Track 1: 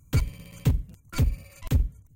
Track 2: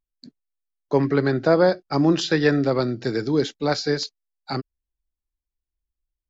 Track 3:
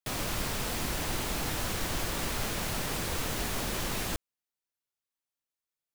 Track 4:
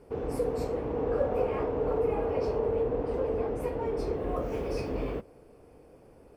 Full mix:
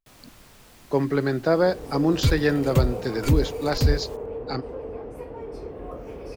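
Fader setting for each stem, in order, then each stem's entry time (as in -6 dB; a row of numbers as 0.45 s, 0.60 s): +2.5 dB, -3.0 dB, -18.0 dB, -5.0 dB; 2.10 s, 0.00 s, 0.00 s, 1.55 s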